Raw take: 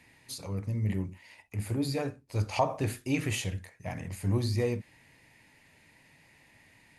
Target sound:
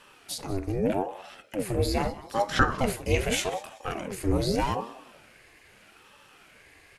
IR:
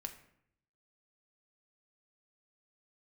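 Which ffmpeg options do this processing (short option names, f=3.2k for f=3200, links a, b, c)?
-filter_complex "[0:a]highpass=98,bandreject=f=60:t=h:w=6,bandreject=f=120:t=h:w=6,bandreject=f=180:t=h:w=6,bandreject=f=240:t=h:w=6,bandreject=f=300:t=h:w=6,bandreject=f=360:t=h:w=6,bandreject=f=420:t=h:w=6,bandreject=f=480:t=h:w=6,asplit=2[a][b];[b]asplit=3[c][d][e];[c]adelay=188,afreqshift=-41,volume=-18dB[f];[d]adelay=376,afreqshift=-82,volume=-28.2dB[g];[e]adelay=564,afreqshift=-123,volume=-38.3dB[h];[f][g][h]amix=inputs=3:normalize=0[i];[a][i]amix=inputs=2:normalize=0,aeval=exprs='val(0)*sin(2*PI*450*n/s+450*0.6/0.81*sin(2*PI*0.81*n/s))':c=same,volume=8.5dB"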